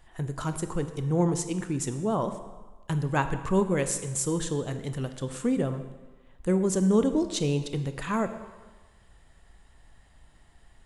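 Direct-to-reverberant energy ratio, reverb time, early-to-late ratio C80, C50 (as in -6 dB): 9.5 dB, 1.3 s, 12.0 dB, 10.5 dB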